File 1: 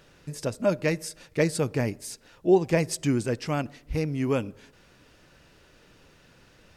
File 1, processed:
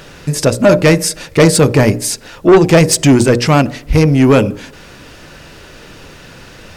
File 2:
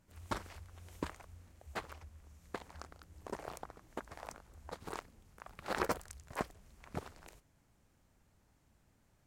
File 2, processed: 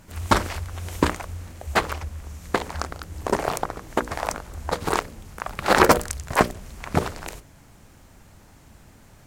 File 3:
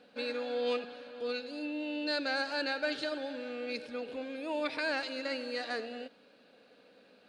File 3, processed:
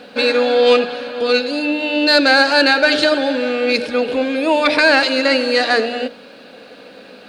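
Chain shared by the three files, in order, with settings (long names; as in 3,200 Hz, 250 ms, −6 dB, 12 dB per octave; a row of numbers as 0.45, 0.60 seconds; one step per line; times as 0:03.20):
mains-hum notches 60/120/180/240/300/360/420/480/540/600 Hz
soft clipping −22.5 dBFS
normalise the peak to −2 dBFS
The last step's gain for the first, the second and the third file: +20.5, +21.0, +22.0 decibels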